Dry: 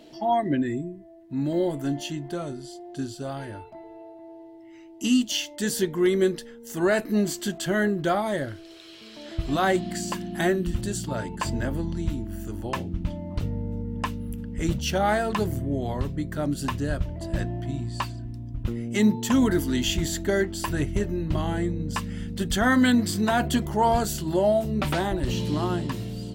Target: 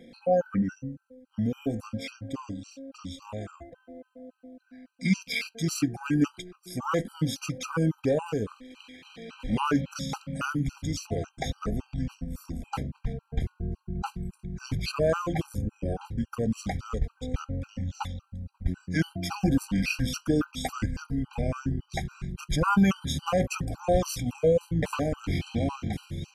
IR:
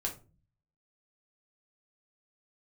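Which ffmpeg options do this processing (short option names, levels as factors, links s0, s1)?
-af "asetrate=34006,aresample=44100,atempo=1.29684,afftfilt=real='re*gt(sin(2*PI*3.6*pts/sr)*(1-2*mod(floor(b*sr/1024/790),2)),0)':imag='im*gt(sin(2*PI*3.6*pts/sr)*(1-2*mod(floor(b*sr/1024/790),2)),0)':win_size=1024:overlap=0.75"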